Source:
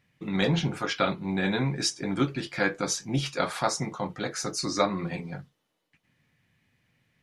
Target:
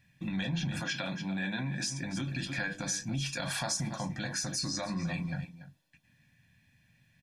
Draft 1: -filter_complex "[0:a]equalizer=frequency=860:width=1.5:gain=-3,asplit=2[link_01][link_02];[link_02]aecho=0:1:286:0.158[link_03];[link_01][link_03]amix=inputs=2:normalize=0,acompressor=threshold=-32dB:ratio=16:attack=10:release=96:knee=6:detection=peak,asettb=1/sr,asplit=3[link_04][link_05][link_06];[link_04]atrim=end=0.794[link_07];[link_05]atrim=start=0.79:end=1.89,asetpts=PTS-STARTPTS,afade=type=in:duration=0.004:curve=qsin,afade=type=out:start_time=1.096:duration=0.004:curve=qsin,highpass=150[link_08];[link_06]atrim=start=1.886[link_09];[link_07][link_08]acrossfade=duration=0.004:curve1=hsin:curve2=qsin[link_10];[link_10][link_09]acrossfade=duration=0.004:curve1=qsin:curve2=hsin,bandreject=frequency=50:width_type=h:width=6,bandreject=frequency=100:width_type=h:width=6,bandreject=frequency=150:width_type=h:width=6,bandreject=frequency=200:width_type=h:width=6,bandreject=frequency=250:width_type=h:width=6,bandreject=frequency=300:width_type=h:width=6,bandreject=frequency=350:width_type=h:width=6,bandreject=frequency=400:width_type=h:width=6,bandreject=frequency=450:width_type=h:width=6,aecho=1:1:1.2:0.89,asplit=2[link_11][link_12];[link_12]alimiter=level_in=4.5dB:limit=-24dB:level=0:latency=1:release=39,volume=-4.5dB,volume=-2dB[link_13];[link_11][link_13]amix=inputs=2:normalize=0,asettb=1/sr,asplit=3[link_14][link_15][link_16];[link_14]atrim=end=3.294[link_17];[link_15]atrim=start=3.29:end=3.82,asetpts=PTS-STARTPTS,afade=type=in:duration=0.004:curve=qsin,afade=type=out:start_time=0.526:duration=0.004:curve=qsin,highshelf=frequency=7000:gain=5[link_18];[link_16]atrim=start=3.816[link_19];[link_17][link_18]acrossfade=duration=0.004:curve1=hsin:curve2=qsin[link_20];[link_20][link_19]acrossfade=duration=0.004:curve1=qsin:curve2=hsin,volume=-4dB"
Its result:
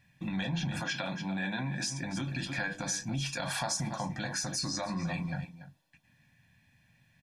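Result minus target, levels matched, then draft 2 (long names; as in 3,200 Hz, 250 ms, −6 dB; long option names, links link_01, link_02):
1,000 Hz band +3.5 dB
-filter_complex "[0:a]equalizer=frequency=860:width=1.5:gain=-9,asplit=2[link_01][link_02];[link_02]aecho=0:1:286:0.158[link_03];[link_01][link_03]amix=inputs=2:normalize=0,acompressor=threshold=-32dB:ratio=16:attack=10:release=96:knee=6:detection=peak,asettb=1/sr,asplit=3[link_04][link_05][link_06];[link_04]atrim=end=0.794[link_07];[link_05]atrim=start=0.79:end=1.89,asetpts=PTS-STARTPTS,afade=type=in:duration=0.004:curve=qsin,afade=type=out:start_time=1.096:duration=0.004:curve=qsin,highpass=150[link_08];[link_06]atrim=start=1.886[link_09];[link_07][link_08]acrossfade=duration=0.004:curve1=hsin:curve2=qsin[link_10];[link_10][link_09]acrossfade=duration=0.004:curve1=qsin:curve2=hsin,bandreject=frequency=50:width_type=h:width=6,bandreject=frequency=100:width_type=h:width=6,bandreject=frequency=150:width_type=h:width=6,bandreject=frequency=200:width_type=h:width=6,bandreject=frequency=250:width_type=h:width=6,bandreject=frequency=300:width_type=h:width=6,bandreject=frequency=350:width_type=h:width=6,bandreject=frequency=400:width_type=h:width=6,bandreject=frequency=450:width_type=h:width=6,aecho=1:1:1.2:0.89,asplit=2[link_11][link_12];[link_12]alimiter=level_in=4.5dB:limit=-24dB:level=0:latency=1:release=39,volume=-4.5dB,volume=-2dB[link_13];[link_11][link_13]amix=inputs=2:normalize=0,asettb=1/sr,asplit=3[link_14][link_15][link_16];[link_14]atrim=end=3.294[link_17];[link_15]atrim=start=3.29:end=3.82,asetpts=PTS-STARTPTS,afade=type=in:duration=0.004:curve=qsin,afade=type=out:start_time=0.526:duration=0.004:curve=qsin,highshelf=frequency=7000:gain=5[link_18];[link_16]atrim=start=3.816[link_19];[link_17][link_18]acrossfade=duration=0.004:curve1=hsin:curve2=qsin[link_20];[link_20][link_19]acrossfade=duration=0.004:curve1=qsin:curve2=hsin,volume=-4dB"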